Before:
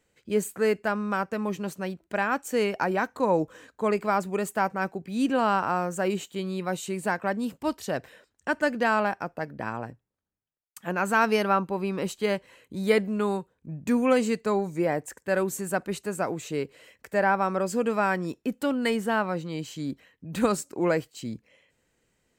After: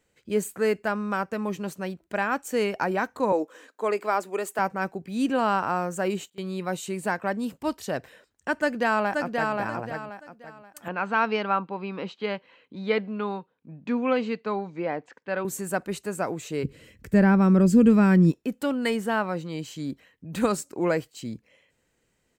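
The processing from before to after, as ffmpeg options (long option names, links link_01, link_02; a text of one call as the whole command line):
ffmpeg -i in.wav -filter_complex "[0:a]asettb=1/sr,asplit=3[link_01][link_02][link_03];[link_01]atrim=end=3.324[link_04];[link_02]atrim=start=3.32:end=4.59,asetpts=PTS-STARTPTS,afade=type=in:duration=0.004:curve=qsin,afade=type=out:start_time=1.266:duration=0.004:curve=qsin,highpass=frequency=280:width=0.5412,highpass=frequency=280:width=1.3066[link_05];[link_03]atrim=start=4.586[link_06];[link_04][link_05]acrossfade=duration=0.004:curve1=hsin:curve2=qsin[link_07];[link_07][link_06]acrossfade=duration=0.004:curve1=qsin:curve2=hsin,asplit=2[link_08][link_09];[link_09]afade=type=in:start_time=8.54:duration=0.01,afade=type=out:start_time=9.56:duration=0.01,aecho=0:1:530|1060|1590|2120:0.668344|0.200503|0.060151|0.0180453[link_10];[link_08][link_10]amix=inputs=2:normalize=0,asettb=1/sr,asplit=3[link_11][link_12][link_13];[link_11]atrim=end=10.884[link_14];[link_12]atrim=start=10.88:end=15.45,asetpts=PTS-STARTPTS,afade=type=in:duration=0.004:curve=qsin,afade=type=out:start_time=4.566:duration=0.004:curve=qsin,highpass=220,equalizer=frequency=370:width_type=q:width=4:gain=-6,equalizer=frequency=600:width_type=q:width=4:gain=-4,equalizer=frequency=1800:width_type=q:width=4:gain=-4,lowpass=frequency=4000:width=0.5412,lowpass=frequency=4000:width=1.3066[link_15];[link_13]atrim=start=15.446[link_16];[link_14][link_15]acrossfade=duration=0.004:curve1=hsin:curve2=qsin[link_17];[link_17][link_16]acrossfade=duration=0.004:curve1=qsin:curve2=hsin,asplit=3[link_18][link_19][link_20];[link_18]afade=type=out:start_time=16.63:duration=0.02[link_21];[link_19]asubboost=boost=12:cutoff=210,afade=type=in:start_time=16.63:duration=0.02,afade=type=out:start_time=18.3:duration=0.02[link_22];[link_20]afade=type=in:start_time=18.3:duration=0.02[link_23];[link_21][link_22][link_23]amix=inputs=3:normalize=0,asplit=3[link_24][link_25][link_26];[link_24]atrim=end=6.3,asetpts=PTS-STARTPTS,afade=type=out:start_time=6.02:duration=0.28:curve=log:silence=0.0794328[link_27];[link_25]atrim=start=6.3:end=6.38,asetpts=PTS-STARTPTS,volume=-22dB[link_28];[link_26]atrim=start=6.38,asetpts=PTS-STARTPTS,afade=type=in:duration=0.28:curve=log:silence=0.0794328[link_29];[link_27][link_28][link_29]concat=n=3:v=0:a=1" out.wav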